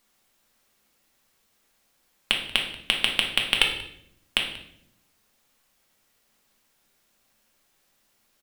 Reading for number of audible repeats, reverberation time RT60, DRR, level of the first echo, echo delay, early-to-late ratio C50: 1, 0.70 s, 1.0 dB, −19.0 dB, 185 ms, 6.5 dB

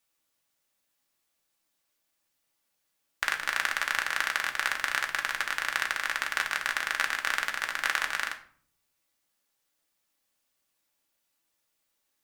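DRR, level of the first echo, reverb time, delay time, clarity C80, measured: 2.5 dB, no echo audible, 0.50 s, no echo audible, 16.5 dB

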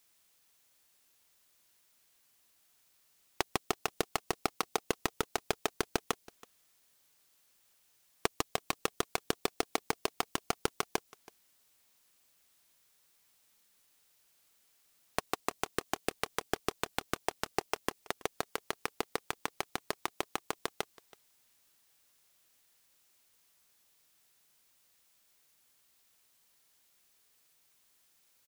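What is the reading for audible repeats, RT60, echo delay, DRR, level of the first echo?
1, no reverb audible, 327 ms, no reverb audible, −22.0 dB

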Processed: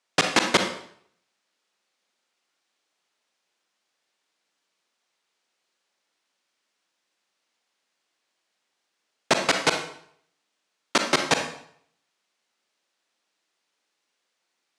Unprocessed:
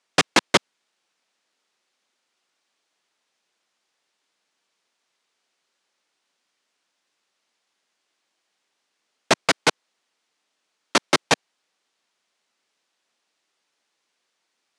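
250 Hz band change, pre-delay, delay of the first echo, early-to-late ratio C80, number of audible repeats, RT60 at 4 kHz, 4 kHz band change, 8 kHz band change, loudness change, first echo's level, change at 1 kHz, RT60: −1.5 dB, 34 ms, no echo audible, 10.0 dB, no echo audible, 0.55 s, −2.0 dB, −2.0 dB, −2.0 dB, no echo audible, −2.0 dB, 0.65 s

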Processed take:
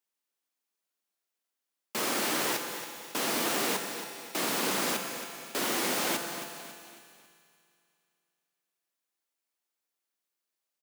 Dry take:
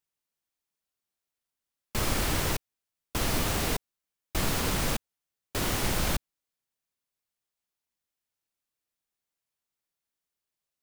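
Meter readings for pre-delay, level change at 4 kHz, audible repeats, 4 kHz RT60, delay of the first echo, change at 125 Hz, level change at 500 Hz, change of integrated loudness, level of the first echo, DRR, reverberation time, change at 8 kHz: 6 ms, +1.0 dB, 4, 2.6 s, 274 ms, −15.5 dB, +1.0 dB, −0.5 dB, −10.5 dB, 4.0 dB, 2.3 s, +1.5 dB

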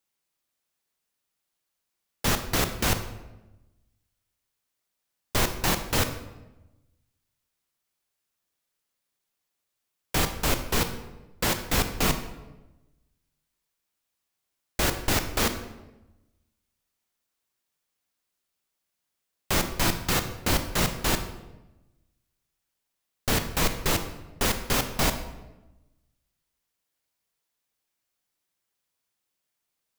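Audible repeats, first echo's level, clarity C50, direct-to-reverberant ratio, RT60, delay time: no echo audible, no echo audible, 9.5 dB, 7.5 dB, 1.0 s, no echo audible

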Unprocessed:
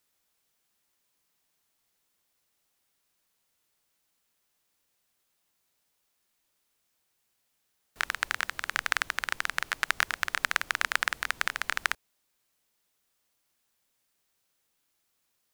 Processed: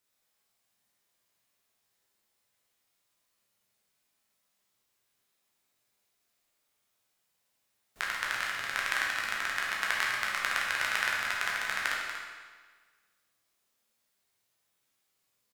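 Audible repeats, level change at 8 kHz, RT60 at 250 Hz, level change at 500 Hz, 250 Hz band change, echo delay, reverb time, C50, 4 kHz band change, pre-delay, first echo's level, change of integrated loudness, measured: 1, −1.5 dB, 1.5 s, +0.5 dB, 0.0 dB, 238 ms, 1.5 s, −0.5 dB, −0.5 dB, 10 ms, −9.0 dB, −0.5 dB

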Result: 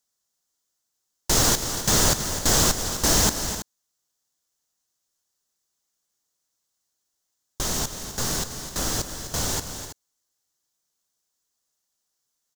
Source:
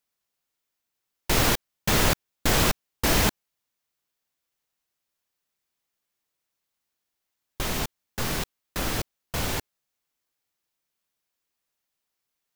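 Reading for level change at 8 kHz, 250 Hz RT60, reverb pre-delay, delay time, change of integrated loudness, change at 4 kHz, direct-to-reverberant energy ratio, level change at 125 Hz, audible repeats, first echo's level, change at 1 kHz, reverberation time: +9.0 dB, no reverb audible, no reverb audible, 255 ms, +3.0 dB, +3.5 dB, no reverb audible, +0.5 dB, 2, −11.0 dB, +0.5 dB, no reverb audible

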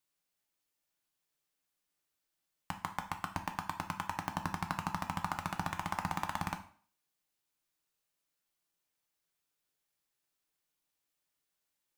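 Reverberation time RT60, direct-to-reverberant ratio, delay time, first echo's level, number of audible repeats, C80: 0.50 s, 5.0 dB, no echo audible, no echo audible, no echo audible, 16.0 dB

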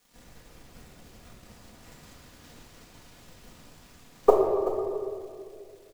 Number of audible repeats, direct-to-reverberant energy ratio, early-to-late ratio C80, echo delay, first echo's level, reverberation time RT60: 1, −2.0 dB, 3.0 dB, 380 ms, −11.0 dB, 2.4 s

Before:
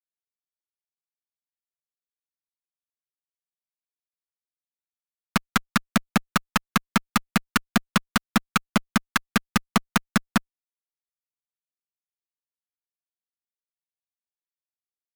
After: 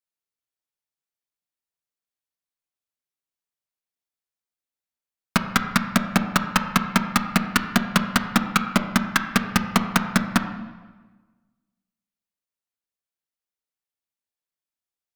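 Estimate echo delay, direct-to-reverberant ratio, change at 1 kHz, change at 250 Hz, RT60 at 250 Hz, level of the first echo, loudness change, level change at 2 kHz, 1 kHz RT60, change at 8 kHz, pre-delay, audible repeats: no echo audible, 7.0 dB, +3.0 dB, +3.0 dB, 1.4 s, no echo audible, +3.0 dB, +2.5 dB, 1.3 s, +2.0 dB, 9 ms, no echo audible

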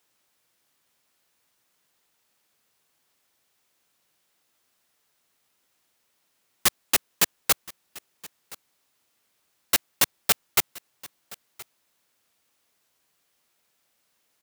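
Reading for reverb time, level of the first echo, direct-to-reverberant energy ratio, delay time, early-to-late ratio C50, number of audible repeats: no reverb audible, −21.5 dB, no reverb audible, 1,022 ms, no reverb audible, 1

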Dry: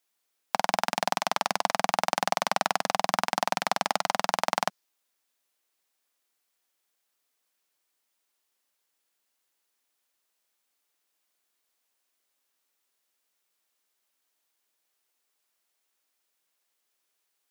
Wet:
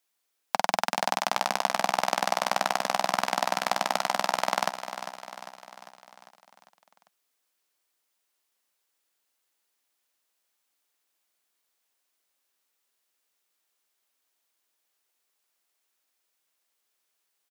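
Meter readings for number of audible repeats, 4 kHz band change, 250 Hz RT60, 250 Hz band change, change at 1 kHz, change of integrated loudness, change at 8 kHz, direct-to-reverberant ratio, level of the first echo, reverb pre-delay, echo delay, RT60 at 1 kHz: 5, +0.5 dB, no reverb audible, −1.0 dB, +0.5 dB, 0.0 dB, +0.5 dB, no reverb audible, −10.5 dB, no reverb audible, 399 ms, no reverb audible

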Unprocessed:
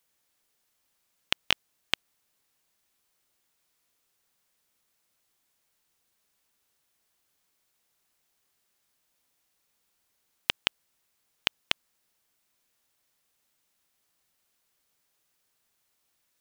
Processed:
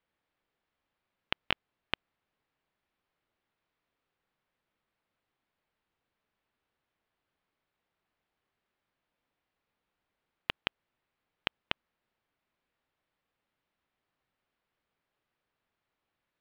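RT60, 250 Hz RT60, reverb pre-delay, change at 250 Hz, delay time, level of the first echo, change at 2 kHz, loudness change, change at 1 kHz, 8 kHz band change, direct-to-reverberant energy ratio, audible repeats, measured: no reverb audible, no reverb audible, no reverb audible, −0.5 dB, no echo audible, no echo audible, −4.5 dB, −6.5 dB, −2.0 dB, below −25 dB, no reverb audible, no echo audible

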